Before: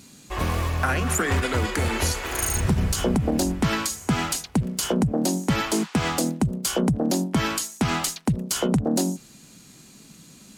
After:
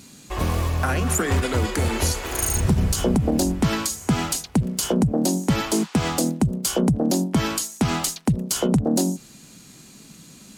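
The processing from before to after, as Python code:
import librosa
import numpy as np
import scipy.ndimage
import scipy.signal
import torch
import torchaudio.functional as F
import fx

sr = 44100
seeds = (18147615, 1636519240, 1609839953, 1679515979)

y = fx.dynamic_eq(x, sr, hz=1800.0, q=0.71, threshold_db=-40.0, ratio=4.0, max_db=-5)
y = y * 10.0 ** (2.5 / 20.0)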